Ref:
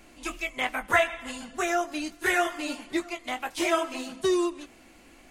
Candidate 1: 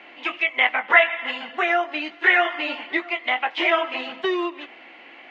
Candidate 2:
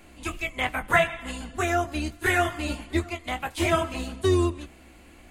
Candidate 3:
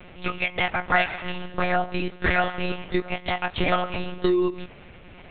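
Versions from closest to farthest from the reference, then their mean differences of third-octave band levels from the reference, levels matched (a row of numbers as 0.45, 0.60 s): 2, 1, 3; 3.5, 8.5, 11.5 dB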